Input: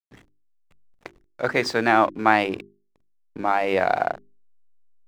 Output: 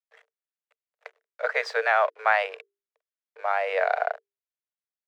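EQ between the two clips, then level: rippled Chebyshev high-pass 440 Hz, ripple 6 dB; high shelf 7300 Hz -11 dB; 0.0 dB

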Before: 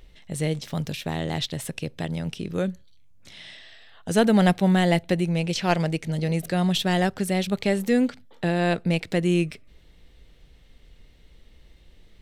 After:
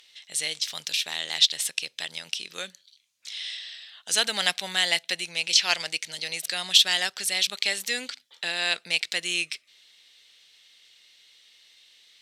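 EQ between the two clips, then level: band-pass 4300 Hz, Q 1; tilt +2.5 dB/oct; +7.0 dB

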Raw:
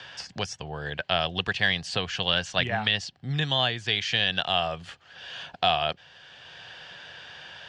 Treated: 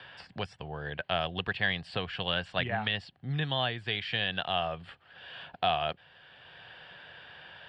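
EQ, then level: running mean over 7 samples; -3.5 dB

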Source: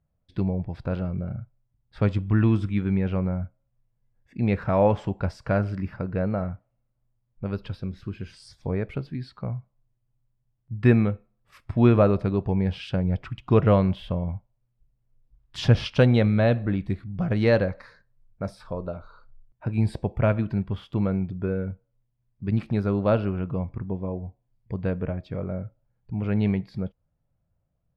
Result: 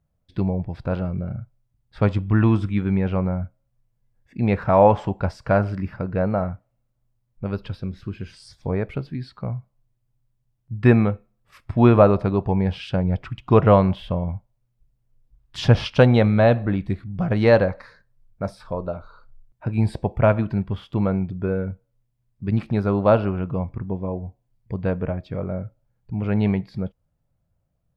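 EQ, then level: dynamic EQ 870 Hz, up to +7 dB, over -38 dBFS, Q 1.2; +2.5 dB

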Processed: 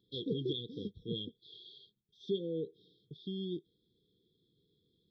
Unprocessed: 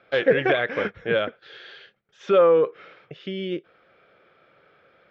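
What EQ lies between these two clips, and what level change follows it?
brick-wall FIR band-stop 540–3200 Hz; fixed phaser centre 2000 Hz, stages 6; -5.0 dB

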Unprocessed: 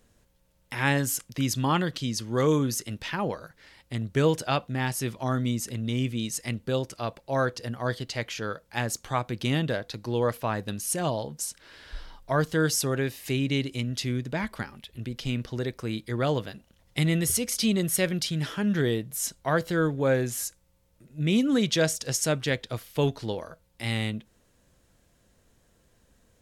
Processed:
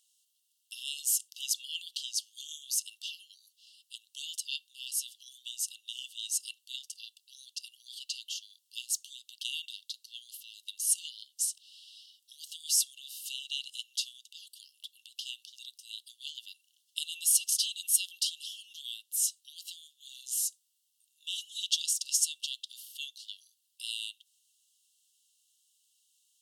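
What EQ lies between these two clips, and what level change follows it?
brick-wall FIR high-pass 2700 Hz; bell 8900 Hz +4 dB 0.36 oct; 0.0 dB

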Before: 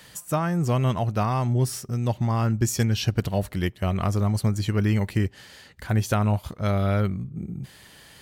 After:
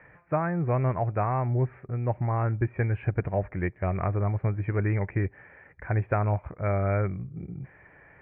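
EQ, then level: rippled Chebyshev low-pass 2400 Hz, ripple 3 dB; bell 220 Hz -11.5 dB 0.27 oct; 0.0 dB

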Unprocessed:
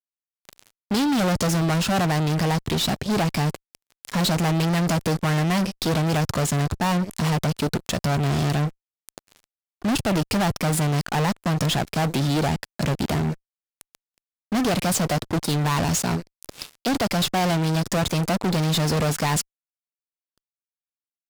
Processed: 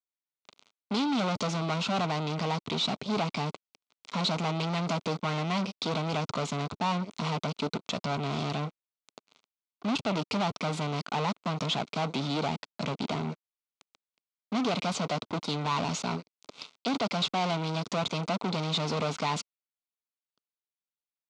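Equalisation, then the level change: speaker cabinet 260–5300 Hz, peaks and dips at 340 Hz -9 dB, 530 Hz -6 dB, 770 Hz -4 dB, 1800 Hz -4 dB, 2900 Hz -3 dB, 5100 Hz -6 dB; bell 1700 Hz -13 dB 0.27 oct; -1.5 dB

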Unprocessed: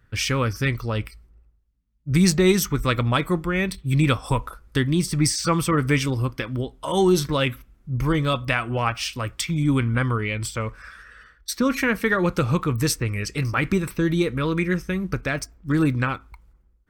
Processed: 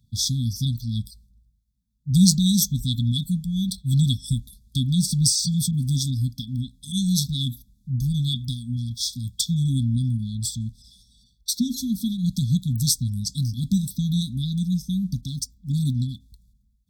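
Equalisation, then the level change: HPF 130 Hz 6 dB/oct; brick-wall FIR band-stop 260–3300 Hz; +4.0 dB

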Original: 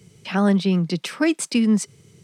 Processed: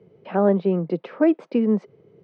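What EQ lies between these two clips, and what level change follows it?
band-pass 520 Hz, Q 1.8; air absorption 250 m; +8.5 dB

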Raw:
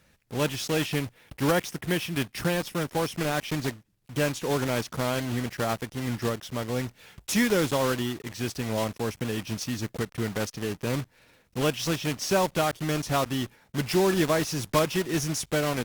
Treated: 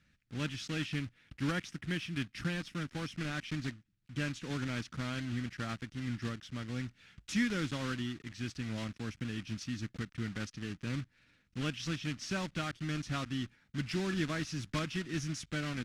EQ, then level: air absorption 87 m; band shelf 630 Hz -12 dB; -6.5 dB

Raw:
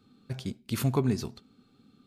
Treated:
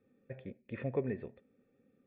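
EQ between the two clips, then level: vocal tract filter e; +7.0 dB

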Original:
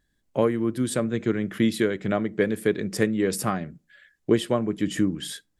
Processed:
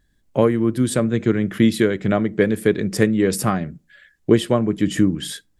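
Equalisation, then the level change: low shelf 160 Hz +6 dB; +4.5 dB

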